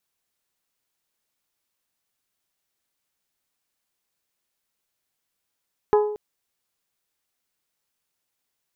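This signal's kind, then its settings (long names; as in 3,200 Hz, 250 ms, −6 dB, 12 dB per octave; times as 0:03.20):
struck glass bell, length 0.23 s, lowest mode 420 Hz, decay 0.75 s, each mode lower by 6 dB, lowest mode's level −12.5 dB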